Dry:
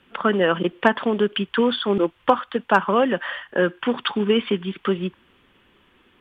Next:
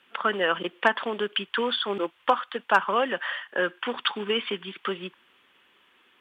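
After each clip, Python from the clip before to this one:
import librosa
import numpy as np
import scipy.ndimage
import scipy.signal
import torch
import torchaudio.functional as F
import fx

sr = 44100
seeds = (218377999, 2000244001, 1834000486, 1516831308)

y = fx.highpass(x, sr, hz=1000.0, slope=6)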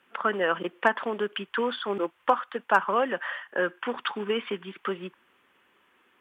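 y = fx.peak_eq(x, sr, hz=3700.0, db=-10.0, octaves=1.1)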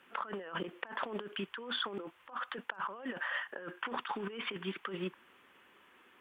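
y = fx.over_compress(x, sr, threshold_db=-36.0, ratio=-1.0)
y = y * 10.0 ** (-5.0 / 20.0)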